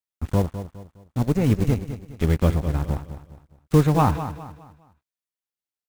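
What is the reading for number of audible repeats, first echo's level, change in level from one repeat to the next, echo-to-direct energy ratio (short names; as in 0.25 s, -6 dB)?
3, -11.5 dB, -9.0 dB, -11.0 dB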